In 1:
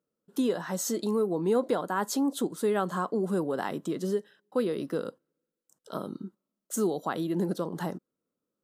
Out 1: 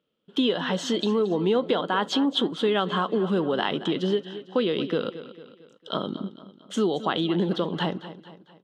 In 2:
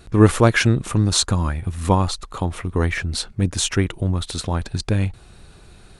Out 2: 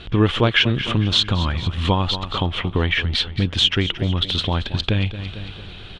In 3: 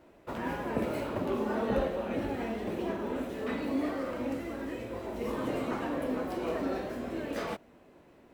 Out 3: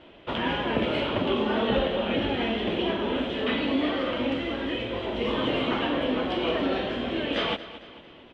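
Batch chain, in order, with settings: resonant low-pass 3.2 kHz, resonance Q 7.2; on a send: feedback delay 225 ms, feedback 47%, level -15.5 dB; on the sum: compression 2:1, threshold -28 dBFS; trim +6.5 dB

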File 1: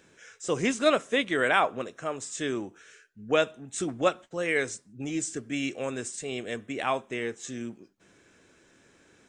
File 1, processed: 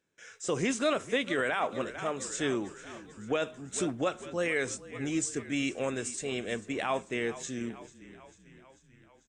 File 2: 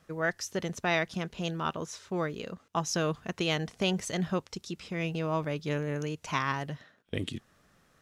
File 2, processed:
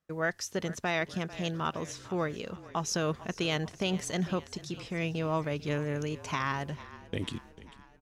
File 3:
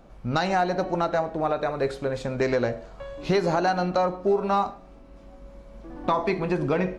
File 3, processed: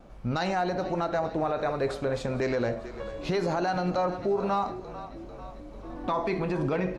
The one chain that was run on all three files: gate with hold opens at -47 dBFS; frequency-shifting echo 444 ms, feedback 62%, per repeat -33 Hz, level -18.5 dB; peak limiter -19 dBFS

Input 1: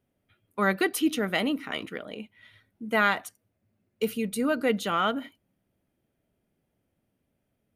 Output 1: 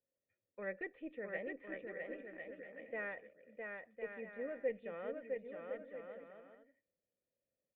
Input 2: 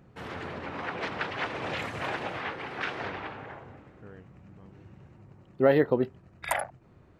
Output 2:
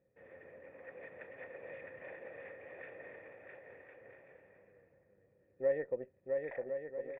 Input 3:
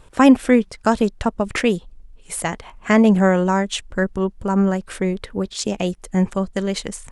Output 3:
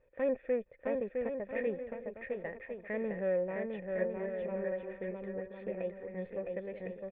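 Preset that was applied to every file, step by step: valve stage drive 13 dB, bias 0.55; cascade formant filter e; bouncing-ball echo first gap 660 ms, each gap 0.6×, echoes 5; trim -4 dB

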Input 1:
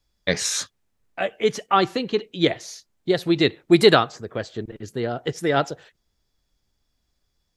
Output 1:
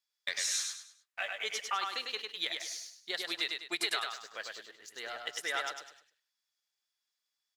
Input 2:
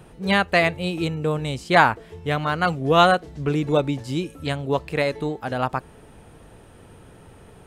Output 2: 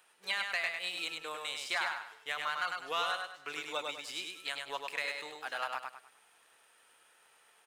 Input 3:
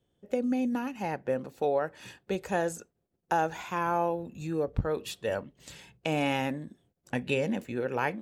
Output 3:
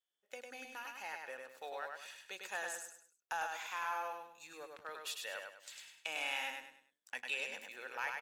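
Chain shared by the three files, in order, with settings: high-pass 1.4 kHz 12 dB/octave; compression 6:1, threshold -27 dBFS; waveshaping leveller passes 1; feedback delay 101 ms, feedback 34%, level -4 dB; trim -7 dB

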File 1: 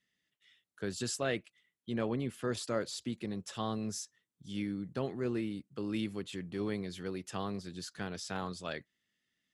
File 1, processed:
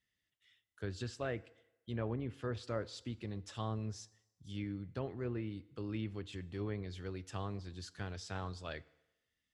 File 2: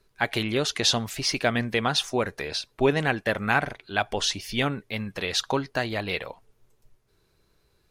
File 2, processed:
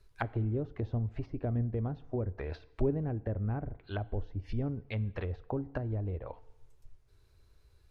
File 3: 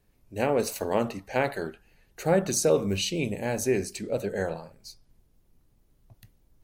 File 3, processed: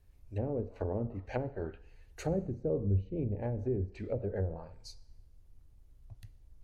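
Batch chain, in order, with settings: resonant low shelf 120 Hz +10.5 dB, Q 1.5; low-pass that closes with the level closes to 360 Hz, closed at -23.5 dBFS; FDN reverb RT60 0.96 s, low-frequency decay 0.75×, high-frequency decay 0.9×, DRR 17.5 dB; trim -4.5 dB

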